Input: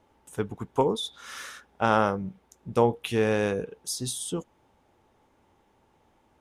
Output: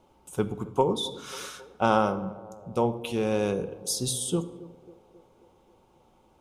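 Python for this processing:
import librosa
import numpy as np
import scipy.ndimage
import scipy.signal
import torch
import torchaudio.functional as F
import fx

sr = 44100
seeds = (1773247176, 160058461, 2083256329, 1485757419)

p1 = fx.peak_eq(x, sr, hz=1800.0, db=-14.5, octaves=0.34)
p2 = fx.rider(p1, sr, range_db=3, speed_s=0.5)
p3 = p2 + fx.echo_banded(p2, sr, ms=270, feedback_pct=66, hz=510.0, wet_db=-18.0, dry=0)
y = fx.room_shoebox(p3, sr, seeds[0], volume_m3=3500.0, walls='furnished', distance_m=1.0)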